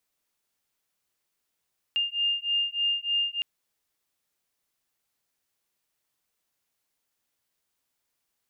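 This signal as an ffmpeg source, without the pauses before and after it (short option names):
-f lavfi -i "aevalsrc='0.0422*(sin(2*PI*2810*t)+sin(2*PI*2813.3*t))':d=1.46:s=44100"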